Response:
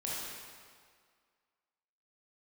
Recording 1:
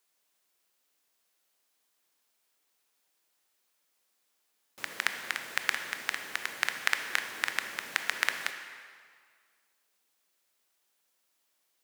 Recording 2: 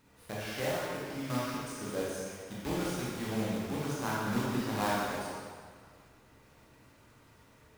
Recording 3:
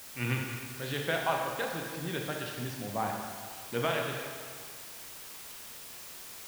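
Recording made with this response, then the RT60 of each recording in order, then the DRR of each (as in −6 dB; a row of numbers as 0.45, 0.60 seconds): 2; 1.9, 1.9, 1.9 seconds; 6.5, −7.0, 0.5 decibels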